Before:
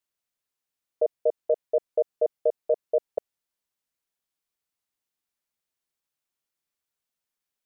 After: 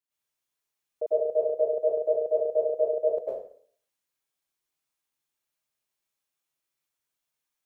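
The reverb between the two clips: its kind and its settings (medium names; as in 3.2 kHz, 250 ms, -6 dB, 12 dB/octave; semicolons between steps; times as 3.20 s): plate-style reverb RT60 0.53 s, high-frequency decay 0.95×, pre-delay 90 ms, DRR -9 dB; trim -7.5 dB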